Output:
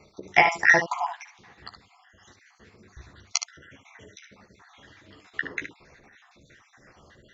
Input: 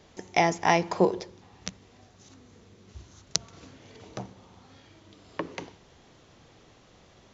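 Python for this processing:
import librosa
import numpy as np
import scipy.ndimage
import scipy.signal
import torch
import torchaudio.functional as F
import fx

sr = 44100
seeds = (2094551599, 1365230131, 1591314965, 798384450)

y = fx.spec_dropout(x, sr, seeds[0], share_pct=62)
y = fx.peak_eq(y, sr, hz=1800.0, db=13.5, octaves=1.0)
y = fx.room_early_taps(y, sr, ms=(14, 63, 73), db=(-5.5, -15.0, -8.5))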